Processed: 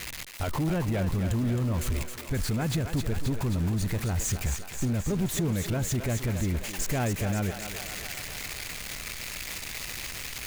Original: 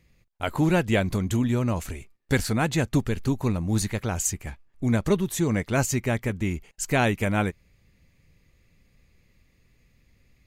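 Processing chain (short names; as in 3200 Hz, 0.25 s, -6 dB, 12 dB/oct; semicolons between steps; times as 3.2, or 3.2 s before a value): switching spikes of -19.5 dBFS; LPF 1600 Hz 6 dB/oct; low shelf 150 Hz +8.5 dB; in parallel at +2 dB: compressor, threshold -31 dBFS, peak gain reduction 16 dB; on the sum: limiter -17.5 dBFS, peak gain reduction 11 dB; soft clip -21 dBFS, distortion -17 dB; on a send: thinning echo 0.266 s, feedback 74%, high-pass 410 Hz, level -6.5 dB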